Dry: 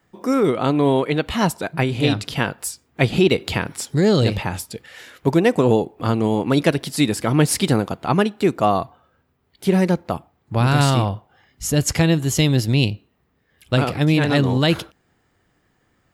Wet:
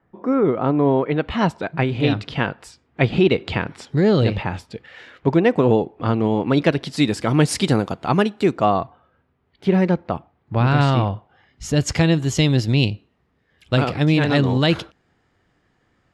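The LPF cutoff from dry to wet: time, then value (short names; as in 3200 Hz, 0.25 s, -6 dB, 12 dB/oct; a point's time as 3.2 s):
0.96 s 1500 Hz
1.4 s 3200 Hz
6.35 s 3200 Hz
7.37 s 7500 Hz
8.4 s 7500 Hz
8.8 s 3100 Hz
11.02 s 3100 Hz
11.92 s 6000 Hz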